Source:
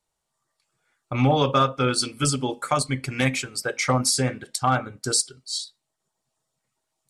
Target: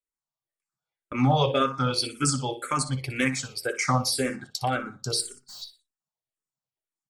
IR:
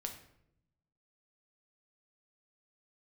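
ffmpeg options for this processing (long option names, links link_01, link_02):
-filter_complex "[0:a]agate=range=-16dB:threshold=-39dB:ratio=16:detection=peak,asplit=3[link_01][link_02][link_03];[link_01]afade=type=out:start_time=5.21:duration=0.02[link_04];[link_02]aeval=exprs='(tanh(112*val(0)+0.45)-tanh(0.45))/112':channel_layout=same,afade=type=in:start_time=5.21:duration=0.02,afade=type=out:start_time=5.61:duration=0.02[link_05];[link_03]afade=type=in:start_time=5.61:duration=0.02[link_06];[link_04][link_05][link_06]amix=inputs=3:normalize=0,asplit=2[link_07][link_08];[link_08]aecho=0:1:60|120|180:0.224|0.0784|0.0274[link_09];[link_07][link_09]amix=inputs=2:normalize=0,asplit=2[link_10][link_11];[link_11]afreqshift=-1.9[link_12];[link_10][link_12]amix=inputs=2:normalize=1"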